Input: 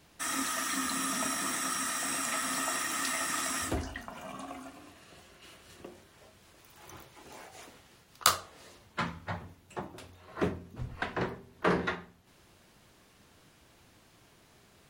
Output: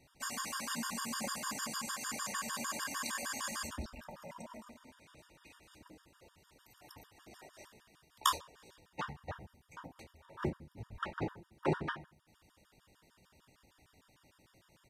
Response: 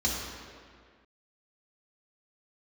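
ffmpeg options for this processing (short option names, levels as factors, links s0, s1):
-af "asetrate=38170,aresample=44100,atempo=1.15535,afftfilt=real='re*gt(sin(2*PI*6.6*pts/sr)*(1-2*mod(floor(b*sr/1024/940),2)),0)':imag='im*gt(sin(2*PI*6.6*pts/sr)*(1-2*mod(floor(b*sr/1024/940),2)),0)':win_size=1024:overlap=0.75,volume=0.708"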